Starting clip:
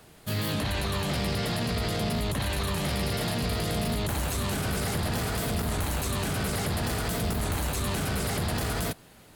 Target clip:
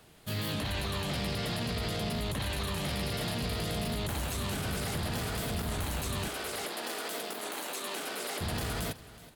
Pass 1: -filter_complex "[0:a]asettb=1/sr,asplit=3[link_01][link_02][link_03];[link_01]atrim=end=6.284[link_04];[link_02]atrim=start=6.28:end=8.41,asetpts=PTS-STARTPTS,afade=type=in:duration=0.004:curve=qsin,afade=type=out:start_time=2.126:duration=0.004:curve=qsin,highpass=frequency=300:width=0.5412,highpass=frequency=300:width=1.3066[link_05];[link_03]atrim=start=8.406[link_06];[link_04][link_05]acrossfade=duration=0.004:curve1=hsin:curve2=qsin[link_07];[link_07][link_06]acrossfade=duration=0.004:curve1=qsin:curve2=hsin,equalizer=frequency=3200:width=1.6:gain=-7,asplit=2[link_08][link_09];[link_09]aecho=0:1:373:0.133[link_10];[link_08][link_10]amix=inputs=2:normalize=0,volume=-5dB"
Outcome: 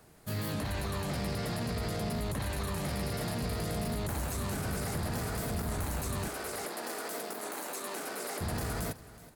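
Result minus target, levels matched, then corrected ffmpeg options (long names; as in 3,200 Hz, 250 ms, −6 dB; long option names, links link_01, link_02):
4,000 Hz band −5.5 dB
-filter_complex "[0:a]asettb=1/sr,asplit=3[link_01][link_02][link_03];[link_01]atrim=end=6.284[link_04];[link_02]atrim=start=6.28:end=8.41,asetpts=PTS-STARTPTS,afade=type=in:duration=0.004:curve=qsin,afade=type=out:start_time=2.126:duration=0.004:curve=qsin,highpass=frequency=300:width=0.5412,highpass=frequency=300:width=1.3066[link_05];[link_03]atrim=start=8.406[link_06];[link_04][link_05]acrossfade=duration=0.004:curve1=hsin:curve2=qsin[link_07];[link_07][link_06]acrossfade=duration=0.004:curve1=qsin:curve2=hsin,equalizer=frequency=3200:width=1.6:gain=3,asplit=2[link_08][link_09];[link_09]aecho=0:1:373:0.133[link_10];[link_08][link_10]amix=inputs=2:normalize=0,volume=-5dB"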